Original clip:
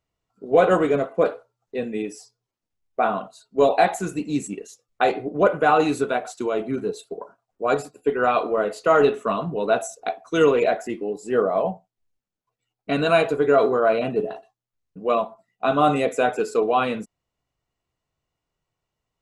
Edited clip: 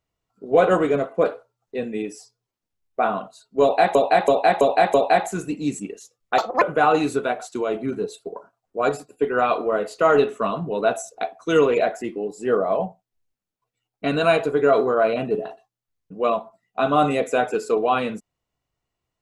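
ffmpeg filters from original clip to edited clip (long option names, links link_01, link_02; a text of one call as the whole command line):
ffmpeg -i in.wav -filter_complex "[0:a]asplit=7[link_01][link_02][link_03][link_04][link_05][link_06][link_07];[link_01]atrim=end=3.952[link_08];[link_02]atrim=start=3.618:end=3.952[link_09];[link_03]atrim=start=3.618:end=3.952[link_10];[link_04]atrim=start=3.618:end=3.952[link_11];[link_05]atrim=start=3.618:end=5.064[link_12];[link_06]atrim=start=5.06:end=5.47,asetpts=PTS-STARTPTS,asetrate=76293,aresample=44100,atrim=end_sample=10451,asetpts=PTS-STARTPTS[link_13];[link_07]atrim=start=5.466[link_14];[link_08][link_09]acrossfade=duration=0.004:curve1=hsin:curve2=hsin[link_15];[link_15][link_10]acrossfade=duration=0.004:curve1=hsin:curve2=hsin[link_16];[link_16][link_11]acrossfade=duration=0.004:curve1=hsin:curve2=hsin[link_17];[link_17][link_12]acrossfade=duration=0.004:curve1=hsin:curve2=hsin[link_18];[link_18][link_13]acrossfade=duration=0.004:curve1=hsin:curve2=hsin[link_19];[link_19][link_14]acrossfade=duration=0.004:curve1=hsin:curve2=hsin" out.wav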